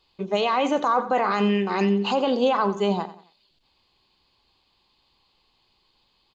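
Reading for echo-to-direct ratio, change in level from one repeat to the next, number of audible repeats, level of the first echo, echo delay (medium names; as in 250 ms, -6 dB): -14.0 dB, -9.0 dB, 3, -14.5 dB, 90 ms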